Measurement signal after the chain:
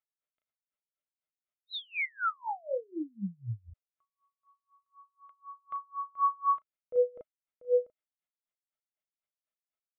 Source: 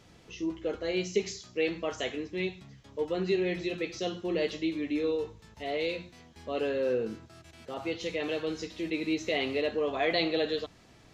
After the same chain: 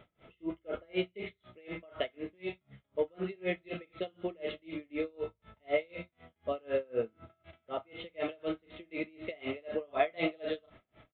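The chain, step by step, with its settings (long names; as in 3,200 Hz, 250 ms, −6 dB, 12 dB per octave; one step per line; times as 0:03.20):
double-tracking delay 35 ms −11 dB
hollow resonant body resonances 620/1,300/2,100 Hz, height 11 dB, ringing for 35 ms
downsampling to 8,000 Hz
tremolo with a sine in dB 4 Hz, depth 33 dB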